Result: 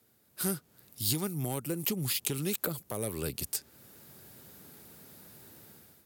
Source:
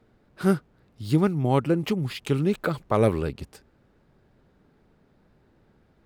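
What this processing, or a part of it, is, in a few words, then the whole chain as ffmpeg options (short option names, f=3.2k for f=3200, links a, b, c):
FM broadcast chain: -filter_complex "[0:a]highpass=f=76:w=0.5412,highpass=f=76:w=1.3066,dynaudnorm=f=240:g=5:m=15dB,acrossover=split=730|7600[a][b][c];[a]acompressor=threshold=-19dB:ratio=4[d];[b]acompressor=threshold=-35dB:ratio=4[e];[c]acompressor=threshold=-57dB:ratio=4[f];[d][e][f]amix=inputs=3:normalize=0,aemphasis=mode=production:type=75fm,alimiter=limit=-13dB:level=0:latency=1:release=313,asoftclip=type=hard:threshold=-15dB,lowpass=f=15k:w=0.5412,lowpass=f=15k:w=1.3066,aemphasis=mode=production:type=75fm,volume=-9dB"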